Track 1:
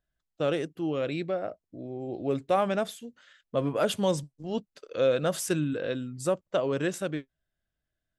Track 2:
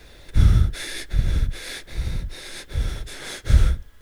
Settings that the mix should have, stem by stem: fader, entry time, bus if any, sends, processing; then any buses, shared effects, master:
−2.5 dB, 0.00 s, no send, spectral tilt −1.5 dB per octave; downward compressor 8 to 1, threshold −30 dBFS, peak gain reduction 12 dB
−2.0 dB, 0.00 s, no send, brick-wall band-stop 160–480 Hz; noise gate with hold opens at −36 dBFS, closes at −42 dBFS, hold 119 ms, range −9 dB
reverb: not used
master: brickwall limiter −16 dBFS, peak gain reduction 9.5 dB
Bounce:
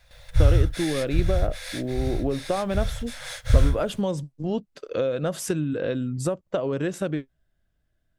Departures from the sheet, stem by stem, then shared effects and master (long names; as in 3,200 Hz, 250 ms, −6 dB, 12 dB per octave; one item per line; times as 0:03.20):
stem 1 −2.5 dB → +7.5 dB
master: missing brickwall limiter −16 dBFS, peak gain reduction 9.5 dB